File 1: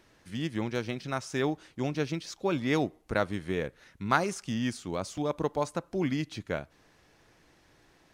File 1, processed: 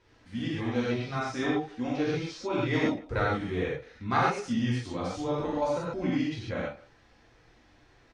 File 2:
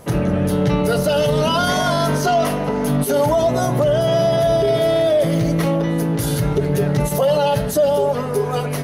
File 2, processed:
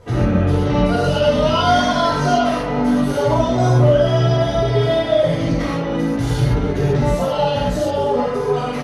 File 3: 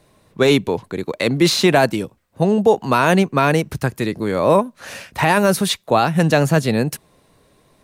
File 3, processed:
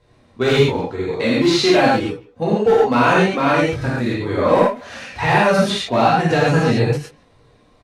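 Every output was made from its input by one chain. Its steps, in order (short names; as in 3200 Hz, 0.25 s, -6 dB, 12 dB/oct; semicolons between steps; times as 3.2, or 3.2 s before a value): LPF 5400 Hz 12 dB/oct; low shelf 170 Hz +4.5 dB; flange 1.9 Hz, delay 2 ms, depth 2 ms, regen -6%; overloaded stage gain 9.5 dB; speakerphone echo 0.15 s, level -20 dB; non-linear reverb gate 0.16 s flat, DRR -7.5 dB; ending taper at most 190 dB/s; gain -3.5 dB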